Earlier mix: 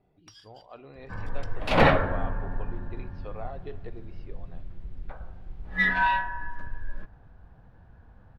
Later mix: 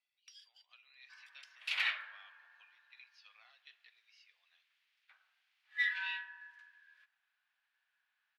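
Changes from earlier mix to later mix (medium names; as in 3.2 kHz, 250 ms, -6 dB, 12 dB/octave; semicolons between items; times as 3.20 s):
speech: remove distance through air 210 m; master: add ladder high-pass 1.9 kHz, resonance 30%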